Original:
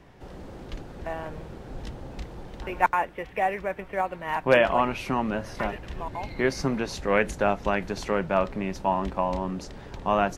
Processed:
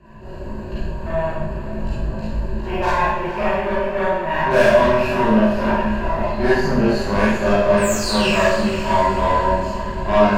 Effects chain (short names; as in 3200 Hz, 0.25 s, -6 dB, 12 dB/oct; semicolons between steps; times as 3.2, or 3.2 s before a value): in parallel at +0.5 dB: compressor, threshold -31 dBFS, peak gain reduction 16.5 dB; on the sum: painted sound fall, 7.77–8.43, 1600–9100 Hz -24 dBFS; ripple EQ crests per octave 1.4, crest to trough 15 dB; added harmonics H 4 -14 dB, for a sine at -8 dBFS; high shelf 2600 Hz -10 dB; on a send: diffused feedback echo 0.49 s, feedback 47%, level -11 dB; on the sum: chorus voices 6, 0.34 Hz, delay 19 ms, depth 1.1 ms; Schroeder reverb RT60 0.86 s, combs from 33 ms, DRR -8.5 dB; gain -3 dB